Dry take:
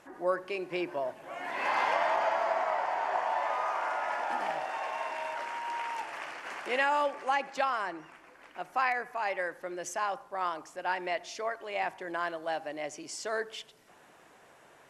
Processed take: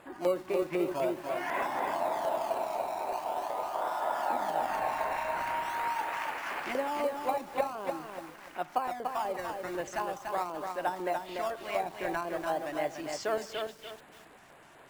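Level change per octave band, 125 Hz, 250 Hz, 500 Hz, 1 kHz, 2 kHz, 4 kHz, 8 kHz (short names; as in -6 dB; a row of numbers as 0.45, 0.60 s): n/a, +4.5 dB, +2.0 dB, -1.0 dB, -4.5 dB, -2.0 dB, -1.5 dB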